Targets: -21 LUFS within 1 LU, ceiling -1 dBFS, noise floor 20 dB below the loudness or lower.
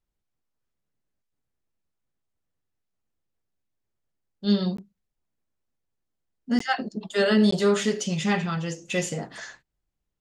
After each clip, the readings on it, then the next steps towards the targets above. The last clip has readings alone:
dropouts 3; longest dropout 14 ms; loudness -25.0 LUFS; peak level -9.5 dBFS; loudness target -21.0 LUFS
-> interpolate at 4.77/6.59/7.51 s, 14 ms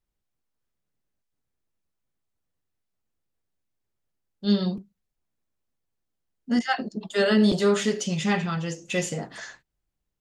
dropouts 0; loudness -25.0 LUFS; peak level -9.5 dBFS; loudness target -21.0 LUFS
-> trim +4 dB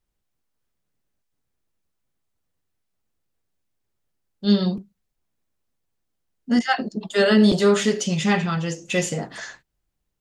loudness -21.0 LUFS; peak level -5.5 dBFS; noise floor -77 dBFS

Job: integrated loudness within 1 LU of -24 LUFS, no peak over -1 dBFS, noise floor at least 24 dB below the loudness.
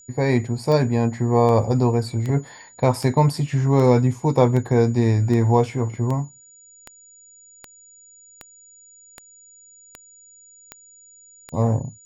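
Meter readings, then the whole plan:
clicks found 15; steady tone 6.9 kHz; tone level -47 dBFS; loudness -20.0 LUFS; peak level -2.0 dBFS; loudness target -24.0 LUFS
-> de-click; band-stop 6.9 kHz, Q 30; trim -4 dB

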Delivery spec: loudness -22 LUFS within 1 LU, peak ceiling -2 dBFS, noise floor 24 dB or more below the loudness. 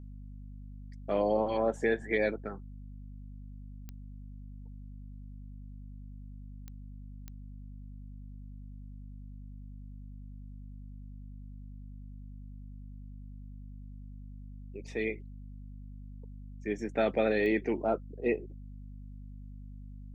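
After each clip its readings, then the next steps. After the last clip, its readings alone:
clicks found 4; hum 50 Hz; highest harmonic 250 Hz; hum level -43 dBFS; loudness -31.5 LUFS; peak level -15.5 dBFS; loudness target -22.0 LUFS
-> de-click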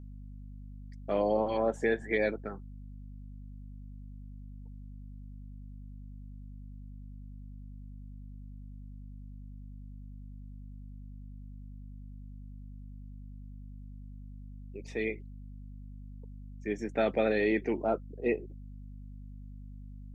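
clicks found 0; hum 50 Hz; highest harmonic 250 Hz; hum level -43 dBFS
-> hum notches 50/100/150/200/250 Hz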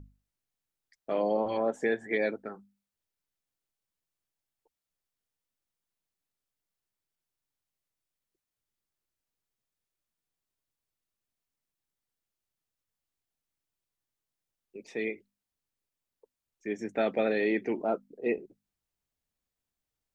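hum not found; loudness -31.0 LUFS; peak level -16.0 dBFS; loudness target -22.0 LUFS
-> trim +9 dB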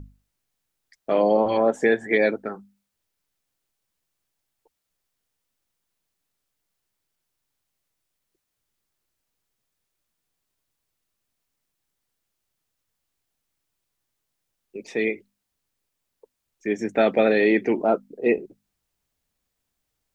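loudness -22.0 LUFS; peak level -7.0 dBFS; noise floor -80 dBFS

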